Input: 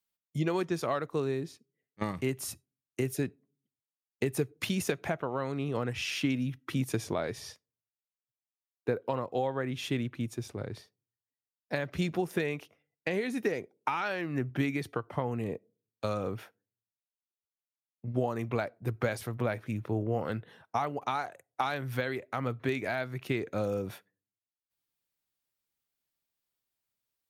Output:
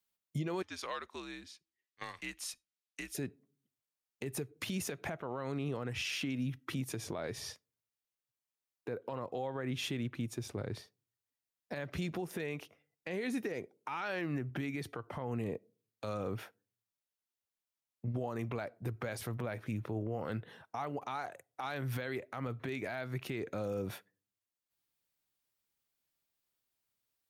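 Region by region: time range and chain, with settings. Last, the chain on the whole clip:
0.62–3.15 band-pass 3700 Hz, Q 0.74 + frequency shift -76 Hz
whole clip: compressor, threshold -32 dBFS; limiter -29 dBFS; gain +1 dB

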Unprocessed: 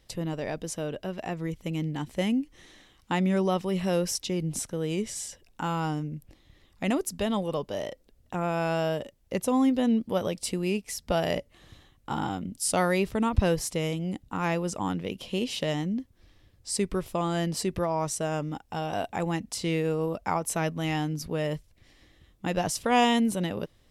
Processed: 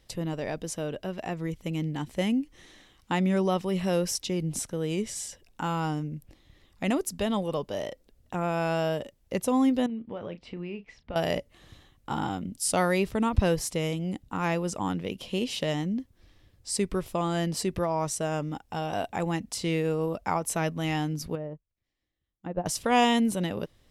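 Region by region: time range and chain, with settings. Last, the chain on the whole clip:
9.86–11.16 ladder low-pass 3300 Hz, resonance 20% + compressor 5:1, threshold -32 dBFS + doubler 35 ms -12 dB
21.35–22.66 treble ducked by the level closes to 880 Hz, closed at -27 dBFS + upward expander 2.5:1, over -42 dBFS
whole clip: dry

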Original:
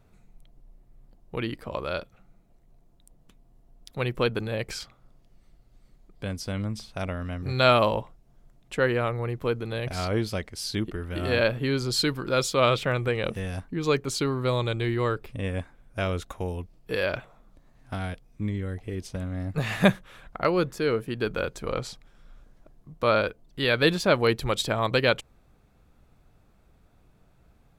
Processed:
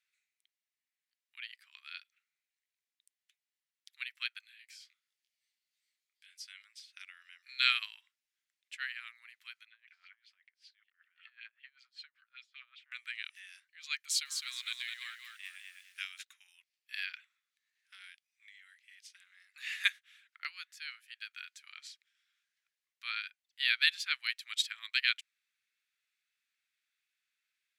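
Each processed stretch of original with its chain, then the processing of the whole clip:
4.41–6.39 tilt +2 dB/oct + compressor 4:1, threshold -37 dBFS + detuned doubles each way 50 cents
9.65–12.92 wah 5.2 Hz 330–2900 Hz, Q 2.4 + high shelf 3100 Hz -8.5 dB + compressor 2.5:1, threshold -35 dBFS
13.99–16.22 high shelf 6600 Hz +10 dB + lo-fi delay 0.209 s, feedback 35%, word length 8-bit, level -3.5 dB
whole clip: steep high-pass 1800 Hz 36 dB/oct; high shelf 9000 Hz -9.5 dB; upward expander 1.5:1, over -41 dBFS; gain +1 dB

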